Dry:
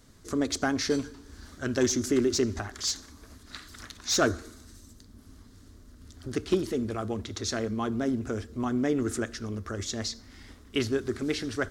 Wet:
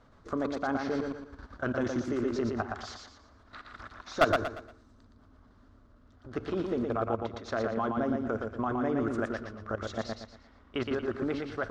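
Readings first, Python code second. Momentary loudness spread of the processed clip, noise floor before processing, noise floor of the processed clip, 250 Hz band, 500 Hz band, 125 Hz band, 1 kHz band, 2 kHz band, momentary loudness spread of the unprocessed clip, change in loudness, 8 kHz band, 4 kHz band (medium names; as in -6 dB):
17 LU, -53 dBFS, -59 dBFS, -3.5 dB, -1.5 dB, -4.0 dB, +3.5 dB, -1.0 dB, 17 LU, -3.0 dB, -20.0 dB, -11.0 dB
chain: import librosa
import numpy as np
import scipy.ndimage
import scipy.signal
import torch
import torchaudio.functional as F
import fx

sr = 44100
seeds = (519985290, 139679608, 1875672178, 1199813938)

p1 = scipy.signal.sosfilt(scipy.signal.butter(2, 2900.0, 'lowpass', fs=sr, output='sos'), x)
p2 = fx.band_shelf(p1, sr, hz=870.0, db=8.5, octaves=1.7)
p3 = fx.level_steps(p2, sr, step_db=15)
p4 = np.clip(10.0 ** (16.0 / 20.0) * p3, -1.0, 1.0) / 10.0 ** (16.0 / 20.0)
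y = p4 + fx.echo_feedback(p4, sr, ms=117, feedback_pct=34, wet_db=-4.0, dry=0)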